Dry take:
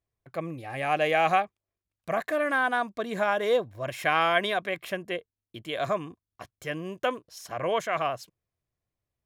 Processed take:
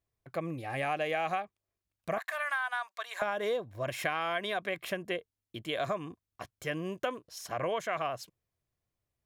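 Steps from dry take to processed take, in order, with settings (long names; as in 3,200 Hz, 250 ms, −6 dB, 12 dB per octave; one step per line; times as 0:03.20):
0:02.18–0:03.22: high-pass filter 880 Hz 24 dB per octave
downward compressor 6 to 1, threshold −29 dBFS, peak gain reduction 11 dB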